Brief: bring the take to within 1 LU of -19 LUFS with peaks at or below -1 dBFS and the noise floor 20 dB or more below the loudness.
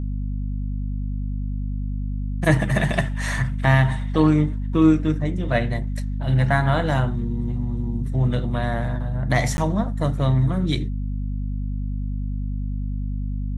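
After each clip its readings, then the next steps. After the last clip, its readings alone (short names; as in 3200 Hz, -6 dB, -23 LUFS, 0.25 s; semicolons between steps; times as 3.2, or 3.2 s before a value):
dropouts 1; longest dropout 11 ms; hum 50 Hz; harmonics up to 250 Hz; hum level -23 dBFS; loudness -23.0 LUFS; peak -2.5 dBFS; loudness target -19.0 LUFS
-> interpolate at 9.57, 11 ms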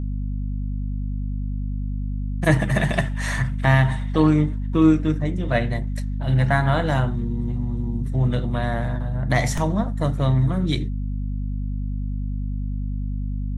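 dropouts 0; hum 50 Hz; harmonics up to 250 Hz; hum level -23 dBFS
-> de-hum 50 Hz, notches 5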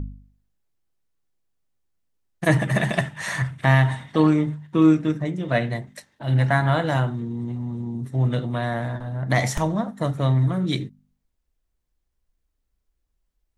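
hum none; loudness -23.0 LUFS; peak -3.0 dBFS; loudness target -19.0 LUFS
-> gain +4 dB; limiter -1 dBFS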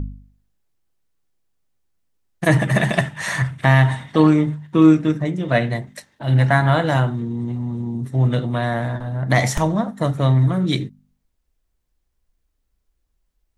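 loudness -19.0 LUFS; peak -1.0 dBFS; noise floor -72 dBFS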